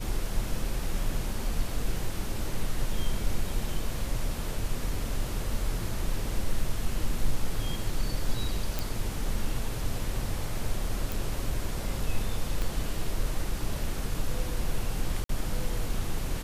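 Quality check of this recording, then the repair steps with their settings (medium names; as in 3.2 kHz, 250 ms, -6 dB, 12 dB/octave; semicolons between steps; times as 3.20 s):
8.79 s: pop
11.12 s: pop
12.62 s: pop -17 dBFS
15.24–15.29 s: dropout 53 ms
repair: de-click; interpolate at 15.24 s, 53 ms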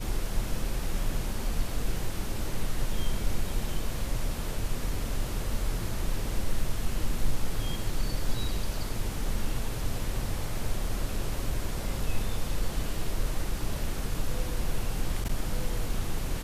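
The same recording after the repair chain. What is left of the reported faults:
12.62 s: pop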